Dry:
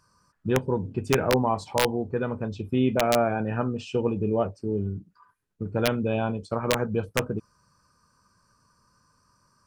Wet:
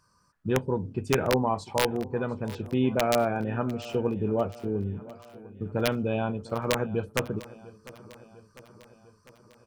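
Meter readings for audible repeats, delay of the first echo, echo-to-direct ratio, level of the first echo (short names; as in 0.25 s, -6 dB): 4, 0.7 s, -17.0 dB, -19.0 dB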